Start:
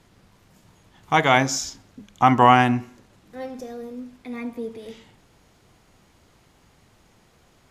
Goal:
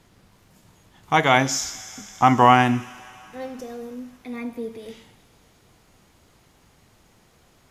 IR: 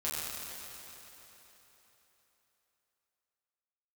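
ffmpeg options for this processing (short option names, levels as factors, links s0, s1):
-filter_complex "[0:a]asplit=2[s0][s1];[s1]aderivative[s2];[1:a]atrim=start_sample=2205[s3];[s2][s3]afir=irnorm=-1:irlink=0,volume=0.335[s4];[s0][s4]amix=inputs=2:normalize=0"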